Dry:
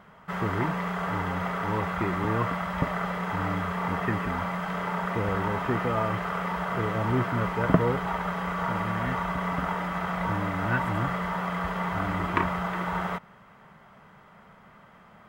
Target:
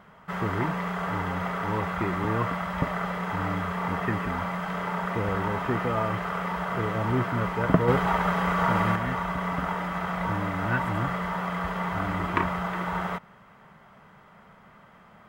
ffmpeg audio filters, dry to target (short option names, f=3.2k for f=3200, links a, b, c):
-filter_complex "[0:a]asettb=1/sr,asplit=3[a][b][c];[a]atrim=end=7.884[d];[b]atrim=start=7.88:end=8.96,asetpts=PTS-STARTPTS,afade=t=in:d=0.004:c=qsin,afade=t=out:st=1.076:d=0.004:c=qsin,acontrast=32[e];[c]atrim=start=8.956[f];[d][e]acrossfade=d=0.004:c1=hsin:c2=qsin[g];[g][f]acrossfade=d=0.004:c1=qsin:c2=hsin"